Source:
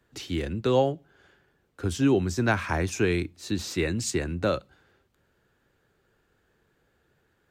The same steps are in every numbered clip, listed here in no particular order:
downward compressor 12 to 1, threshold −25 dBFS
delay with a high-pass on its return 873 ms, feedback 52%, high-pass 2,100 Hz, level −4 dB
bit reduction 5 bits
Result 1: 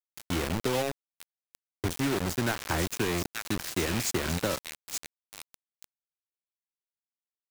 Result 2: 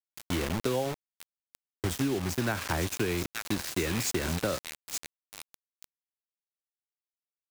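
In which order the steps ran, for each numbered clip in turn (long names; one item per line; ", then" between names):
delay with a high-pass on its return, then downward compressor, then bit reduction
delay with a high-pass on its return, then bit reduction, then downward compressor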